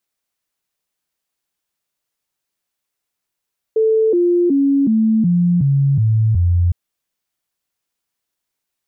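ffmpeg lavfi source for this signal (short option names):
-f lavfi -i "aevalsrc='0.282*clip(min(mod(t,0.37),0.37-mod(t,0.37))/0.005,0,1)*sin(2*PI*441*pow(2,-floor(t/0.37)/3)*mod(t,0.37))':d=2.96:s=44100"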